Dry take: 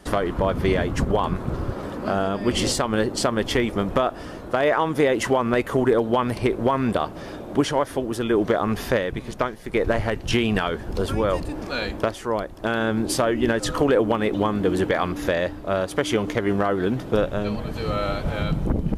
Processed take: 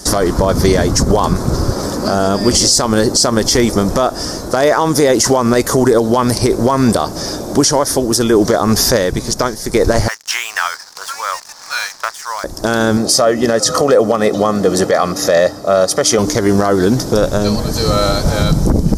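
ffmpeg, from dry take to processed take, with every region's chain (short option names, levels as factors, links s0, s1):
-filter_complex "[0:a]asettb=1/sr,asplit=3[s0][s1][s2];[s0]atrim=end=10.084[s3];[s1]atrim=start=10.08:end=12.44,asetpts=PTS-STARTPTS,afade=t=in:d=0.004:c=qsin,afade=t=out:st=2.356:d=0.004:c=qsin,highpass=f=1000:w=0.5412,highpass=f=1000:w=1.3066,highshelf=f=3500:t=q:w=1.5:g=-12.5,aeval=exprs='sgn(val(0))*max(abs(val(0))-0.00398,0)':c=same[s4];[s2]atrim=start=12.436[s5];[s3][s4]acrossfade=d=0.004:c1=hsin:c2=qsin[s6];[s6][s5]acrossfade=d=0.004:c1=qsin:c2=hsin,asettb=1/sr,asplit=3[s7][s8][s9];[s7]atrim=end=12.974[s10];[s8]atrim=start=12.97:end=16.19,asetpts=PTS-STARTPTS,afade=t=in:d=0.004:c=qsin,afade=t=out:st=3.216:d=0.004:c=qsin,highpass=180,highshelf=f=4300:g=-8,aecho=1:1:1.6:0.53,atrim=end_sample=142002[s11];[s9]atrim=start=16.186[s12];[s10][s11]acrossfade=d=0.004:c1=hsin:c2=qsin[s13];[s13][s12]acrossfade=d=0.004:c1=qsin:c2=hsin,highshelf=f=3900:t=q:w=3:g=11.5,alimiter=level_in=4.22:limit=0.891:release=50:level=0:latency=1,volume=0.891"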